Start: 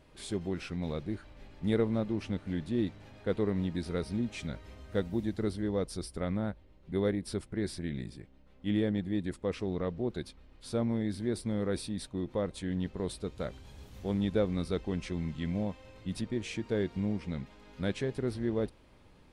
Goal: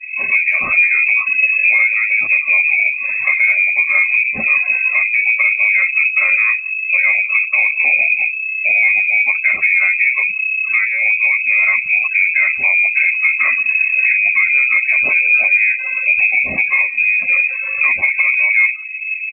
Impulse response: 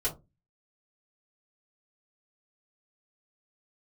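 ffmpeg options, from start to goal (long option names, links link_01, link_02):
-filter_complex "[0:a]asplit=3[link_01][link_02][link_03];[link_01]afade=type=out:start_time=3.29:duration=0.02[link_04];[link_02]highpass=67,afade=type=in:start_time=3.29:duration=0.02,afade=type=out:start_time=4.03:duration=0.02[link_05];[link_03]afade=type=in:start_time=4.03:duration=0.02[link_06];[link_04][link_05][link_06]amix=inputs=3:normalize=0,acompressor=threshold=-37dB:ratio=16,asettb=1/sr,asplit=3[link_07][link_08][link_09];[link_07]atrim=end=16.634[link_10];[link_08]atrim=start=16.63:end=17.16,asetpts=PTS-STARTPTS,afade=type=in:duration=0.004:curve=qsin,afade=type=out:start_time=0.526:duration=0.004:curve=qsin,equalizer=frequency=340:width_type=o:width=0.83:gain=-9.5[link_11];[link_09]atrim=start=17.156[link_12];[link_10][link_11]acrossfade=duration=0.004:curve1=hsin:curve2=qsin[link_13];[link_13][link_12]acrossfade=duration=0.004:curve1=qsin:curve2=hsin[link_14];[1:a]atrim=start_sample=2205,afade=type=out:start_time=0.16:duration=0.01,atrim=end_sample=7497[link_15];[link_14][link_15]afir=irnorm=-1:irlink=0,asettb=1/sr,asplit=3[link_16][link_17][link_18];[link_16]atrim=end=5.554[link_19];[link_17]atrim=start=5.55:end=6.29,asetpts=PTS-STARTPTS,afade=type=in:duration=0.004:curve=qsin,afade=type=out:start_time=0.736:duration=0.004:curve=qsin,adynamicequalizer=threshold=0.00316:dfrequency=530:dqfactor=6.5:tfrequency=530:tqfactor=6.5:attack=5:release=100:ratio=0.375:range=2.5:mode=cutabove:tftype=bell[link_20];[link_18]atrim=start=6.286[link_21];[link_19][link_20]acrossfade=duration=0.004:curve1=hsin:curve2=qsin[link_22];[link_22][link_21]acrossfade=duration=0.004:curve1=qsin:curve2=hsin,afftfilt=real='re*gte(hypot(re,im),0.00447)':imag='im*gte(hypot(re,im),0.00447)':win_size=1024:overlap=0.75,asplit=2[link_23][link_24];[link_24]adelay=180,highpass=300,lowpass=3400,asoftclip=type=hard:threshold=-29.5dB,volume=-27dB[link_25];[link_23][link_25]amix=inputs=2:normalize=0,lowpass=frequency=2200:width_type=q:width=0.5098,lowpass=frequency=2200:width_type=q:width=0.6013,lowpass=frequency=2200:width_type=q:width=0.9,lowpass=frequency=2200:width_type=q:width=2.563,afreqshift=-2600,alimiter=level_in=25dB:limit=-1dB:release=50:level=0:latency=1,volume=-3.5dB" -ar 48000 -c:a libopus -b:a 48k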